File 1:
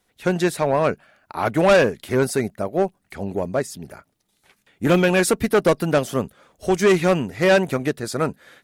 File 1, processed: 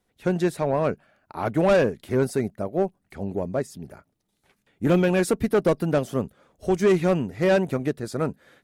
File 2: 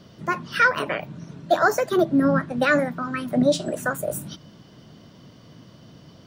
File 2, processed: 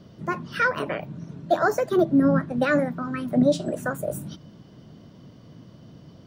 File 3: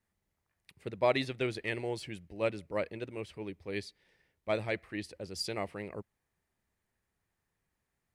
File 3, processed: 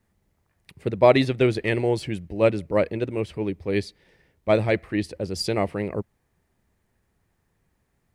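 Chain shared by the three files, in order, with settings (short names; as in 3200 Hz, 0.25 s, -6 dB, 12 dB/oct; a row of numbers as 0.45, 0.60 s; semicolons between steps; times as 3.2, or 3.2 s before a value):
tilt shelf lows +4 dB, about 790 Hz; match loudness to -24 LUFS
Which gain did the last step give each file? -5.0, -2.5, +11.0 dB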